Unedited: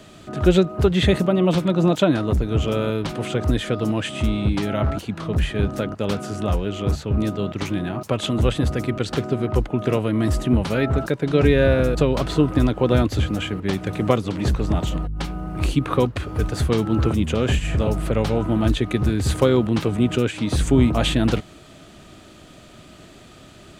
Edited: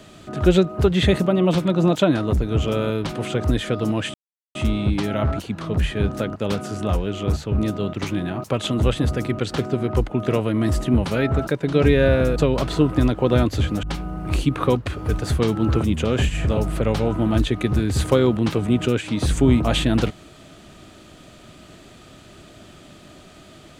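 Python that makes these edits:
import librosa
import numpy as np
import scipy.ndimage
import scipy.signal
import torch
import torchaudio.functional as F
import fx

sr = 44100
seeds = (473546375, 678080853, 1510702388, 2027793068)

y = fx.edit(x, sr, fx.insert_silence(at_s=4.14, length_s=0.41),
    fx.cut(start_s=13.42, length_s=1.71), tone=tone)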